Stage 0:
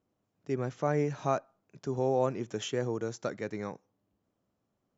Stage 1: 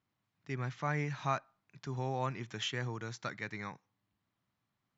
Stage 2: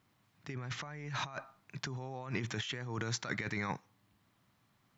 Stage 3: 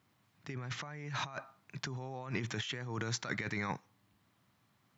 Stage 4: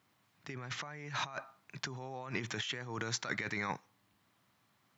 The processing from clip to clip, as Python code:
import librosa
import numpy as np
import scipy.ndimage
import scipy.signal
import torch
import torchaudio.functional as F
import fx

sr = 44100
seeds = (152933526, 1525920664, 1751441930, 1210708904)

y1 = fx.graphic_eq_10(x, sr, hz=(125, 500, 1000, 2000, 4000), db=(8, -7, 7, 11, 10))
y1 = y1 * librosa.db_to_amplitude(-8.5)
y2 = fx.over_compress(y1, sr, threshold_db=-45.0, ratio=-1.0)
y2 = y2 * librosa.db_to_amplitude(5.0)
y3 = scipy.signal.sosfilt(scipy.signal.butter(2, 58.0, 'highpass', fs=sr, output='sos'), y2)
y4 = fx.low_shelf(y3, sr, hz=240.0, db=-7.5)
y4 = y4 * librosa.db_to_amplitude(1.5)